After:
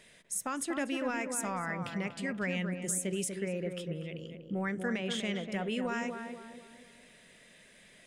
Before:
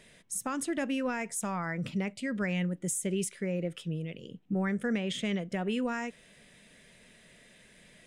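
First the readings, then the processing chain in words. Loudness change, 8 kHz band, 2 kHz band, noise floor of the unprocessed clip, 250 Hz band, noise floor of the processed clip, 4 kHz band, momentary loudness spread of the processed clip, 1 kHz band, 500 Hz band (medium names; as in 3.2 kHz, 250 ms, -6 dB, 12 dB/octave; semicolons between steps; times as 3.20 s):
-2.0 dB, 0.0 dB, 0.0 dB, -59 dBFS, -3.5 dB, -59 dBFS, 0.0 dB, 10 LU, 0.0 dB, -1.0 dB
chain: bass shelf 400 Hz -6 dB; tape echo 243 ms, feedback 52%, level -4 dB, low-pass 1.3 kHz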